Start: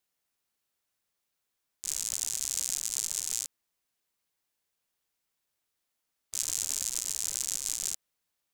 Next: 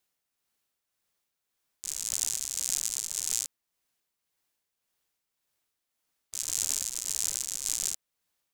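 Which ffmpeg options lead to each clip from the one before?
ffmpeg -i in.wav -af "tremolo=f=1.8:d=0.46,volume=3dB" out.wav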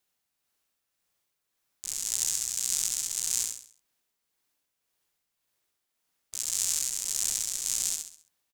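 ffmpeg -i in.wav -af "aecho=1:1:67|134|201|268|335:0.668|0.267|0.107|0.0428|0.0171" out.wav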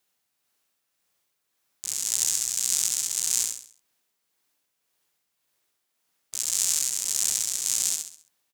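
ffmpeg -i in.wav -af "highpass=frequency=110:poles=1,volume=4dB" out.wav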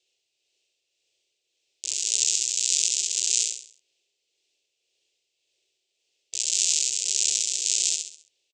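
ffmpeg -i in.wav -af "firequalizer=gain_entry='entry(120,0);entry(210,-15);entry(360,12);entry(560,8);entry(830,-5);entry(1200,-18);entry(2600,14);entry(7800,7);entry(11000,-20)':delay=0.05:min_phase=1,volume=-6dB" out.wav

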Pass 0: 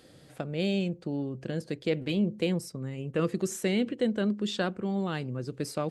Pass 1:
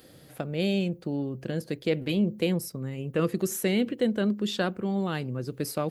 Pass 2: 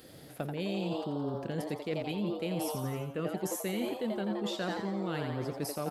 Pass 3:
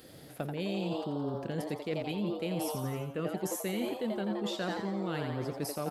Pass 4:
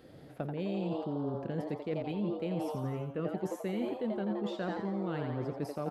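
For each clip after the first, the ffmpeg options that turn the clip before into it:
ffmpeg -i in.wav -af "aexciter=amount=4.8:drive=5.3:freq=11000,volume=2dB" out.wav
ffmpeg -i in.wav -filter_complex "[0:a]asplit=9[link_01][link_02][link_03][link_04][link_05][link_06][link_07][link_08][link_09];[link_02]adelay=86,afreqshift=140,volume=-6.5dB[link_10];[link_03]adelay=172,afreqshift=280,volume=-11.2dB[link_11];[link_04]adelay=258,afreqshift=420,volume=-16dB[link_12];[link_05]adelay=344,afreqshift=560,volume=-20.7dB[link_13];[link_06]adelay=430,afreqshift=700,volume=-25.4dB[link_14];[link_07]adelay=516,afreqshift=840,volume=-30.2dB[link_15];[link_08]adelay=602,afreqshift=980,volume=-34.9dB[link_16];[link_09]adelay=688,afreqshift=1120,volume=-39.6dB[link_17];[link_01][link_10][link_11][link_12][link_13][link_14][link_15][link_16][link_17]amix=inputs=9:normalize=0,areverse,acompressor=threshold=-31dB:ratio=6,areverse" out.wav
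ffmpeg -i in.wav -af anull out.wav
ffmpeg -i in.wav -af "lowpass=frequency=1300:poles=1" out.wav

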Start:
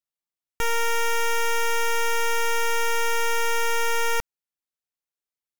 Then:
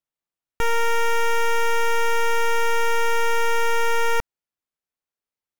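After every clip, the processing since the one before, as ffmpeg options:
ffmpeg -i in.wav -af "highshelf=frequency=3000:gain=-8.5,volume=4dB" out.wav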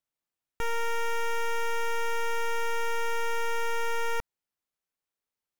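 ffmpeg -i in.wav -af "alimiter=level_in=2dB:limit=-24dB:level=0:latency=1,volume=-2dB" out.wav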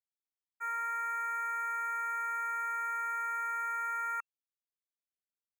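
ffmpeg -i in.wav -af "highpass=frequency=1300:width_type=q:width=5.1,agate=range=-33dB:threshold=-21dB:ratio=3:detection=peak,afftfilt=real='re*(1-between(b*sr/4096,2700,6200))':imag='im*(1-between(b*sr/4096,2700,6200))':win_size=4096:overlap=0.75,volume=-6dB" out.wav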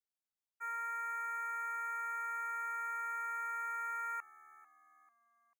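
ffmpeg -i in.wav -filter_complex "[0:a]asplit=4[link_01][link_02][link_03][link_04];[link_02]adelay=443,afreqshift=-76,volume=-20.5dB[link_05];[link_03]adelay=886,afreqshift=-152,volume=-27.4dB[link_06];[link_04]adelay=1329,afreqshift=-228,volume=-34.4dB[link_07];[link_01][link_05][link_06][link_07]amix=inputs=4:normalize=0,volume=-4.5dB" out.wav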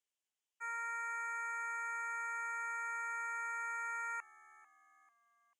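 ffmpeg -i in.wav -af "highpass=420,equalizer=frequency=690:width_type=q:width=4:gain=-4,equalizer=frequency=1300:width_type=q:width=4:gain=-7,equalizer=frequency=3000:width_type=q:width=4:gain=7,equalizer=frequency=4300:width_type=q:width=4:gain=-8,equalizer=frequency=6800:width_type=q:width=4:gain=4,lowpass=frequency=9400:width=0.5412,lowpass=frequency=9400:width=1.3066,volume=3dB" out.wav

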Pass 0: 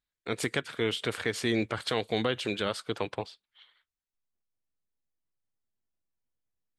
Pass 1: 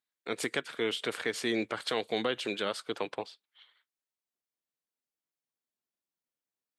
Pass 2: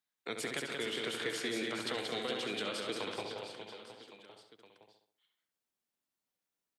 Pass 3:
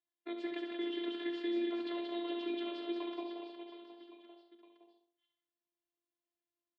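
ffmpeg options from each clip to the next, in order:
ffmpeg -i in.wav -af "highpass=230,volume=-1.5dB" out.wav
ffmpeg -i in.wav -filter_complex "[0:a]asplit=2[link_01][link_02];[link_02]adelay=67,lowpass=frequency=3400:poles=1,volume=-6dB,asplit=2[link_03][link_04];[link_04]adelay=67,lowpass=frequency=3400:poles=1,volume=0.38,asplit=2[link_05][link_06];[link_06]adelay=67,lowpass=frequency=3400:poles=1,volume=0.38,asplit=2[link_07][link_08];[link_08]adelay=67,lowpass=frequency=3400:poles=1,volume=0.38,asplit=2[link_09][link_10];[link_10]adelay=67,lowpass=frequency=3400:poles=1,volume=0.38[link_11];[link_03][link_05][link_07][link_09][link_11]amix=inputs=5:normalize=0[link_12];[link_01][link_12]amix=inputs=2:normalize=0,acrossover=split=180|2600[link_13][link_14][link_15];[link_13]acompressor=threshold=-53dB:ratio=4[link_16];[link_14]acompressor=threshold=-39dB:ratio=4[link_17];[link_15]acompressor=threshold=-41dB:ratio=4[link_18];[link_16][link_17][link_18]amix=inputs=3:normalize=0,asplit=2[link_19][link_20];[link_20]aecho=0:1:180|414|718.2|1114|1628:0.631|0.398|0.251|0.158|0.1[link_21];[link_19][link_21]amix=inputs=2:normalize=0" out.wav
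ffmpeg -i in.wav -filter_complex "[0:a]afftfilt=real='hypot(re,im)*cos(PI*b)':imag='0':win_size=512:overlap=0.75,highpass=frequency=150:width=0.5412,highpass=frequency=150:width=1.3066,equalizer=frequency=320:width_type=q:width=4:gain=6,equalizer=frequency=1400:width_type=q:width=4:gain=-9,equalizer=frequency=2300:width_type=q:width=4:gain=-6,lowpass=frequency=3200:width=0.5412,lowpass=frequency=3200:width=1.3066,asplit=2[link_01][link_02];[link_02]adelay=38,volume=-11dB[link_03];[link_01][link_03]amix=inputs=2:normalize=0" out.wav

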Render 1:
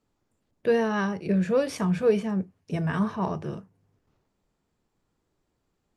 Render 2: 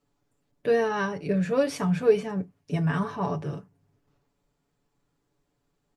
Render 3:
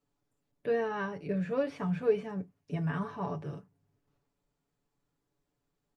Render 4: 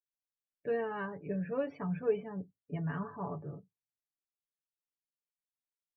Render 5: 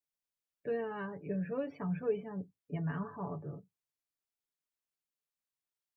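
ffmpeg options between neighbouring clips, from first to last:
ffmpeg -i in.wav -af "aecho=1:1:7:0.68,volume=-1dB" out.wav
ffmpeg -i in.wav -filter_complex "[0:a]acrossover=split=3400[link_01][link_02];[link_02]acompressor=threshold=-60dB:ratio=4:attack=1:release=60[link_03];[link_01][link_03]amix=inputs=2:normalize=0,volume=-7dB" out.wav
ffmpeg -i in.wav -af "afftdn=noise_reduction=33:noise_floor=-48,volume=-3.5dB" out.wav
ffmpeg -i in.wav -filter_complex "[0:a]acrossover=split=450|3000[link_01][link_02][link_03];[link_02]acompressor=threshold=-43dB:ratio=2[link_04];[link_01][link_04][link_03]amix=inputs=3:normalize=0" out.wav

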